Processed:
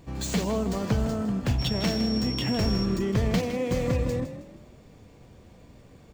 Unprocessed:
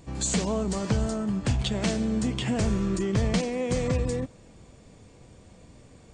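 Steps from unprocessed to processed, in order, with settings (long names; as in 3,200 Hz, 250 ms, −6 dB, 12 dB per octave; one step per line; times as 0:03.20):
running median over 5 samples
0:01.58–0:02.84: steady tone 5,500 Hz −34 dBFS
echo with shifted repeats 159 ms, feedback 34%, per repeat +35 Hz, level −11.5 dB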